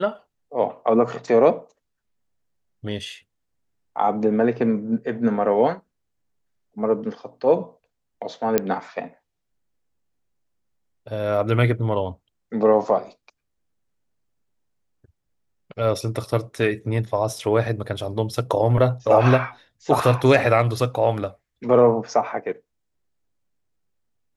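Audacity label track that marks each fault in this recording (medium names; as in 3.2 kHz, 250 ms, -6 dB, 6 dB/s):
8.580000	8.580000	pop -4 dBFS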